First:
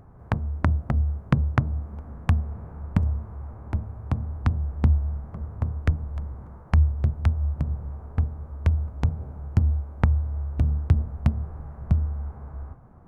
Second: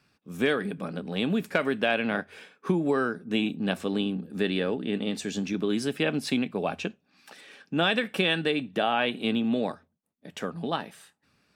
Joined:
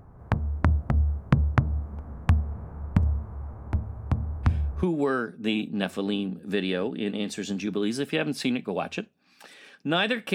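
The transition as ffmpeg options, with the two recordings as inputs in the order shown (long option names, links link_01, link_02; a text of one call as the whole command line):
ffmpeg -i cue0.wav -i cue1.wav -filter_complex "[1:a]asplit=2[link_01][link_02];[0:a]apad=whole_dur=10.34,atrim=end=10.34,atrim=end=4.832[link_03];[link_02]atrim=start=2.698:end=8.21[link_04];[link_01]atrim=start=2.3:end=2.7,asetpts=PTS-STARTPTS,volume=-7dB,afade=type=in:duration=0.004:curve=hsin,afade=type=out:start_time=0.396:duration=0.004:curve=hsin,adelay=4430[link_05];[link_03][link_04]acrossfade=duration=0.004:curve1=hsin:curve2=hsin[link_06];[link_06][link_05]amix=inputs=2:normalize=0" out.wav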